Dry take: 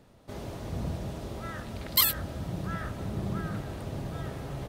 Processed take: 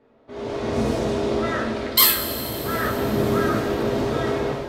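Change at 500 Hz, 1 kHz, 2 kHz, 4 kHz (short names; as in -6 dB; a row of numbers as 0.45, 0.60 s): +18.0, +13.0, +12.5, +8.5 dB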